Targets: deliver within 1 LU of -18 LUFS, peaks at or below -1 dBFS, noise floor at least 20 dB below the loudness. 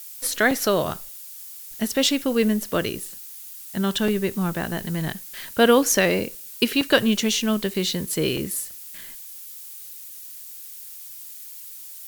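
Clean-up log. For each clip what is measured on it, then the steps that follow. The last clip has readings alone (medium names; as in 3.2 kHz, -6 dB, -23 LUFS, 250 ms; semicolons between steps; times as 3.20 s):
dropouts 6; longest dropout 3.2 ms; noise floor -40 dBFS; noise floor target -43 dBFS; loudness -22.5 LUFS; peak level -3.0 dBFS; loudness target -18.0 LUFS
-> interpolate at 0.51/4.08/6.81/7.74/8.37/8.98 s, 3.2 ms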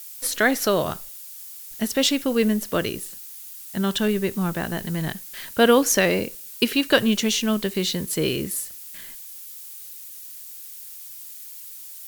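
dropouts 0; noise floor -40 dBFS; noise floor target -43 dBFS
-> noise print and reduce 6 dB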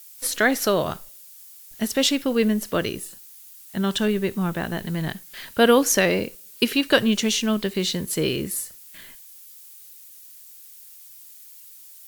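noise floor -46 dBFS; loudness -22.5 LUFS; peak level -3.0 dBFS; loudness target -18.0 LUFS
-> trim +4.5 dB; peak limiter -1 dBFS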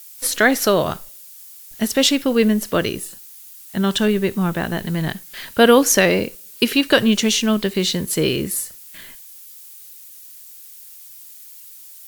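loudness -18.5 LUFS; peak level -1.0 dBFS; noise floor -41 dBFS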